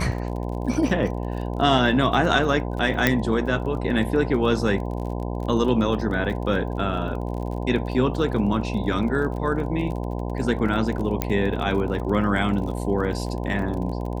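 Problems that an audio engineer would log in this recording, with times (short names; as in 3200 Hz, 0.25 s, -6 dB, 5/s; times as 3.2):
buzz 60 Hz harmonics 17 -28 dBFS
crackle 35/s -32 dBFS
3.07 pop -4 dBFS
11.22 pop -7 dBFS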